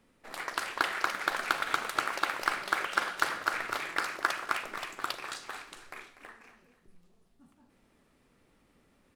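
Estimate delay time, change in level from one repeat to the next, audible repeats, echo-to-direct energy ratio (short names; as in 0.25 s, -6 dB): 0.244 s, -9.5 dB, 2, -13.5 dB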